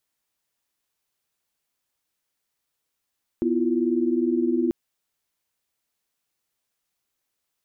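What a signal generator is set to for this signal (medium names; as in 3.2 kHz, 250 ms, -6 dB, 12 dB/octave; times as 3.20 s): chord B3/E4/F4 sine, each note -24 dBFS 1.29 s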